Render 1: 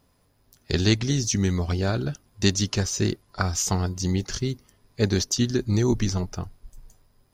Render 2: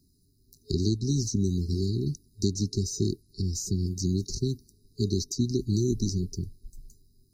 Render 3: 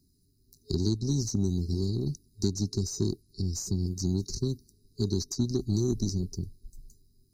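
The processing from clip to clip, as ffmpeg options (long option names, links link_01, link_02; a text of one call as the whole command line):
ffmpeg -i in.wav -filter_complex "[0:a]acrossover=split=120|940[link_01][link_02][link_03];[link_01]acompressor=threshold=-31dB:ratio=4[link_04];[link_02]acompressor=threshold=-24dB:ratio=4[link_05];[link_03]acompressor=threshold=-33dB:ratio=4[link_06];[link_04][link_05][link_06]amix=inputs=3:normalize=0,afftfilt=real='re*(1-between(b*sr/4096,420,3800))':imag='im*(1-between(b*sr/4096,420,3800))':win_size=4096:overlap=0.75" out.wav
ffmpeg -i in.wav -af "aeval=exprs='0.237*(cos(1*acos(clip(val(0)/0.237,-1,1)))-cos(1*PI/2))+0.00188*(cos(7*acos(clip(val(0)/0.237,-1,1)))-cos(7*PI/2))+0.00473*(cos(8*acos(clip(val(0)/0.237,-1,1)))-cos(8*PI/2))':channel_layout=same,volume=-1.5dB" out.wav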